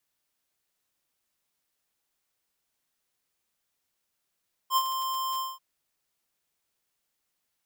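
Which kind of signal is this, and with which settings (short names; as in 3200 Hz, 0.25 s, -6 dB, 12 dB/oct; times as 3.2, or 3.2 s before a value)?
ADSR square 1050 Hz, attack 65 ms, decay 55 ms, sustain -9 dB, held 0.69 s, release 0.197 s -21.5 dBFS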